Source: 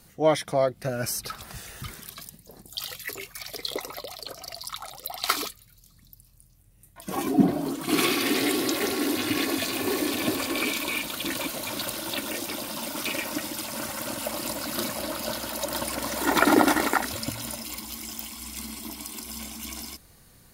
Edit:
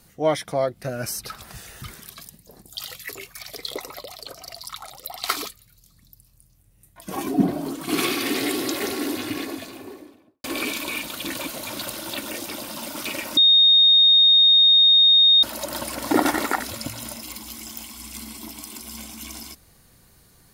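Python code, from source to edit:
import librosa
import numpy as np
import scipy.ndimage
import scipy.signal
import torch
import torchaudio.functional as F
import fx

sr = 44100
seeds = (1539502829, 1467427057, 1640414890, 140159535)

y = fx.studio_fade_out(x, sr, start_s=8.87, length_s=1.57)
y = fx.edit(y, sr, fx.bleep(start_s=13.37, length_s=2.06, hz=3700.0, db=-11.0),
    fx.cut(start_s=16.11, length_s=0.42), tone=tone)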